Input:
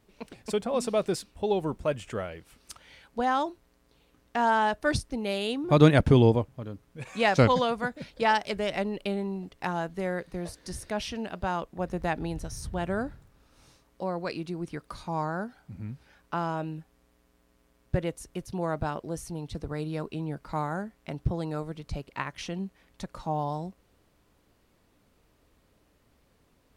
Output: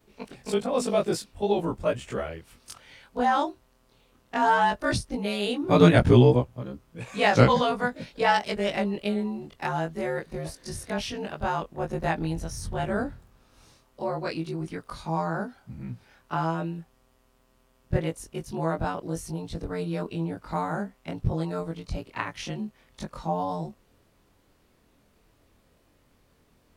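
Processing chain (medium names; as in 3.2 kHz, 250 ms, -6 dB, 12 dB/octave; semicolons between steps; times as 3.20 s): short-time spectra conjugated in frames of 49 ms; trim +5.5 dB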